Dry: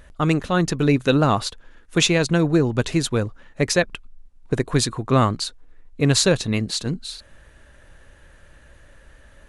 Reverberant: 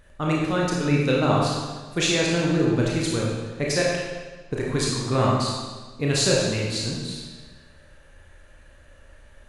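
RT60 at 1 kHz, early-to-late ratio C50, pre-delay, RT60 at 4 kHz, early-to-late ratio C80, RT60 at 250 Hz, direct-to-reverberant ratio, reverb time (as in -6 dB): 1.4 s, -0.5 dB, 25 ms, 1.2 s, 2.0 dB, 1.4 s, -4.0 dB, 1.4 s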